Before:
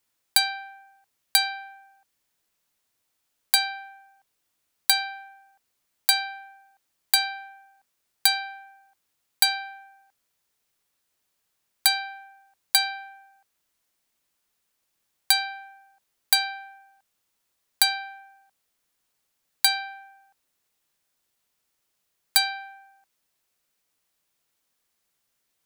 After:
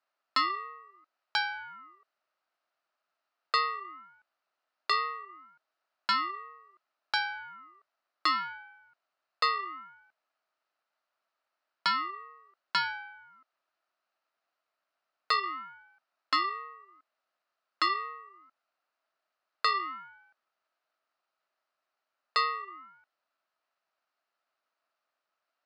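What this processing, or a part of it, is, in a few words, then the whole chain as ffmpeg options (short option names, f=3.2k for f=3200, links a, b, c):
voice changer toy: -af "aeval=exprs='val(0)*sin(2*PI*530*n/s+530*0.4/0.69*sin(2*PI*0.69*n/s))':c=same,highpass=420,equalizer=f=440:t=q:w=4:g=-6,equalizer=f=650:t=q:w=4:g=9,equalizer=f=1.3k:t=q:w=4:g=9,equalizer=f=2.2k:t=q:w=4:g=-4,equalizer=f=3.4k:t=q:w=4:g=-9,lowpass=f=4.1k:w=0.5412,lowpass=f=4.1k:w=1.3066"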